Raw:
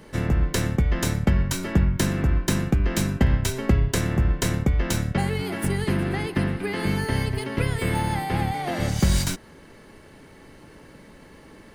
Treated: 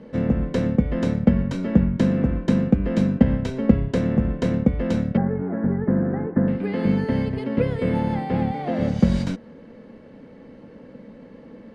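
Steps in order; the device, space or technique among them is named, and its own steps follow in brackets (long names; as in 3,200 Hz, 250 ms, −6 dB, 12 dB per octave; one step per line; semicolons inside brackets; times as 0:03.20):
inside a cardboard box (low-pass filter 3,900 Hz 12 dB per octave; hollow resonant body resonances 230/490 Hz, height 17 dB, ringing for 35 ms)
0:05.17–0:06.48: elliptic low-pass filter 1,700 Hz, stop band 80 dB
level −6.5 dB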